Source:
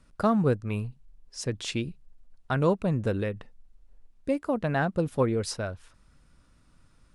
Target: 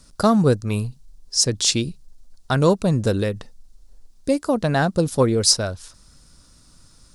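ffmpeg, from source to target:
ffmpeg -i in.wav -af "highshelf=frequency=3500:width_type=q:width=1.5:gain=10.5,acontrast=35,volume=2dB" out.wav

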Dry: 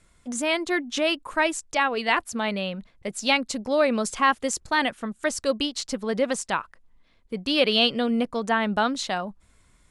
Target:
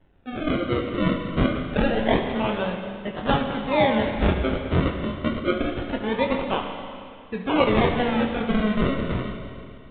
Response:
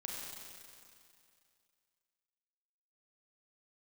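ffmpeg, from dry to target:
-filter_complex "[0:a]acrusher=samples=36:mix=1:aa=0.000001:lfo=1:lforange=36:lforate=0.25,asplit=2[link_01][link_02];[1:a]atrim=start_sample=2205,adelay=23[link_03];[link_02][link_03]afir=irnorm=-1:irlink=0,volume=-2dB[link_04];[link_01][link_04]amix=inputs=2:normalize=0,aresample=8000,aresample=44100"

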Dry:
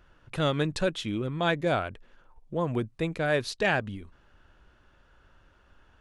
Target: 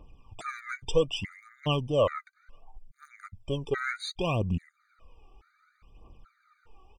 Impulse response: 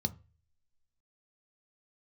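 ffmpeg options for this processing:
-af "asetrate=37926,aresample=44100,aphaser=in_gain=1:out_gain=1:delay=2.7:decay=0.66:speed=0.66:type=triangular,afftfilt=real='re*gt(sin(2*PI*1.2*pts/sr)*(1-2*mod(floor(b*sr/1024/1200),2)),0)':imag='im*gt(sin(2*PI*1.2*pts/sr)*(1-2*mod(floor(b*sr/1024/1200),2)),0)':win_size=1024:overlap=0.75"

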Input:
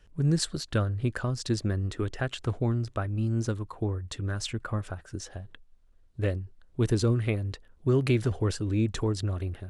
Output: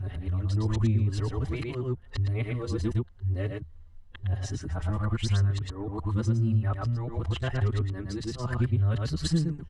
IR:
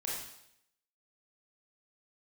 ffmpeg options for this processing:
-filter_complex "[0:a]areverse,equalizer=frequency=75:width=3:gain=14.5,aecho=1:1:112:0.668,acompressor=threshold=-30dB:ratio=6,highshelf=frequency=6100:gain=-11,aecho=1:1:1:0.32,asplit=2[link_01][link_02];[link_02]adelay=5,afreqshift=0.9[link_03];[link_01][link_03]amix=inputs=2:normalize=1,volume=7.5dB"

